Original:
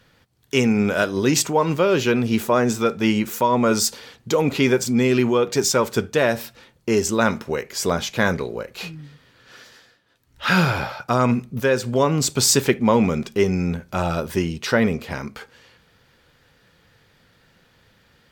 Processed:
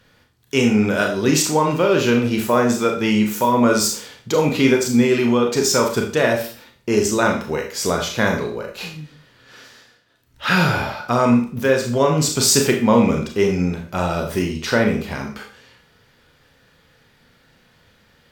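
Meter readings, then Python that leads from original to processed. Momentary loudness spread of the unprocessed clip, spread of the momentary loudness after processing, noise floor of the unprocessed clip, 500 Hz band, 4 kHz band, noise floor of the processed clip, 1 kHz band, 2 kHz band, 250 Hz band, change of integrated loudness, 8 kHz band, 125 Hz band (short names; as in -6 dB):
9 LU, 10 LU, -59 dBFS, +2.0 dB, +2.0 dB, -57 dBFS, +2.0 dB, +2.0 dB, +2.5 dB, +2.0 dB, +2.0 dB, +1.0 dB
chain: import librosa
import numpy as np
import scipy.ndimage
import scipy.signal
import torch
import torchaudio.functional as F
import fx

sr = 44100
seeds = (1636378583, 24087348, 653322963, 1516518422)

y = fx.rev_schroeder(x, sr, rt60_s=0.41, comb_ms=26, drr_db=2.0)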